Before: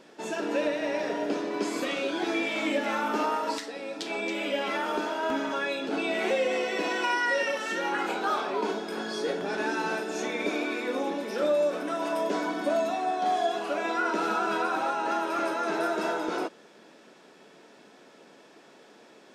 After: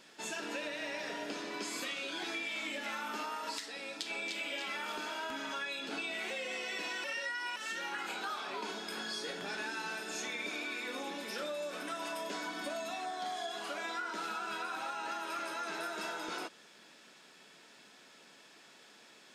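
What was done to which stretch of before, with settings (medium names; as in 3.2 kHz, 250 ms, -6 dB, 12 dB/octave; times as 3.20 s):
3.80–4.35 s: echo throw 300 ms, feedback 45%, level -2.5 dB
7.04–7.56 s: reverse
13.05–14.24 s: band-stop 2.6 kHz, Q 11
whole clip: amplifier tone stack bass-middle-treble 5-5-5; band-stop 5.8 kHz, Q 23; compression, threshold -45 dBFS; trim +9 dB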